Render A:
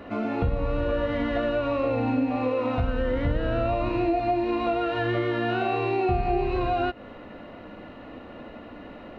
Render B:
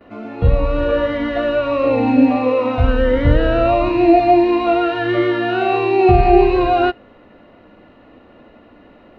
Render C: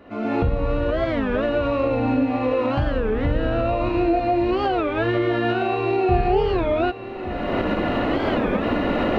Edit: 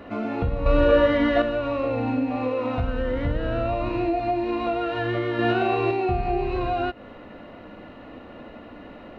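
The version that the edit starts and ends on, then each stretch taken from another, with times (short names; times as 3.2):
A
0.66–1.42 from B
5.39–5.91 from C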